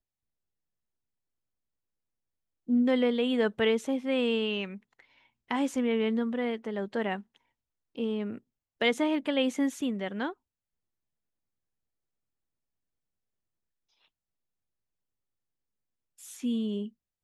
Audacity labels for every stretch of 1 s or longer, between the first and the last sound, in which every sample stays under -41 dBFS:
10.320000	16.220000	silence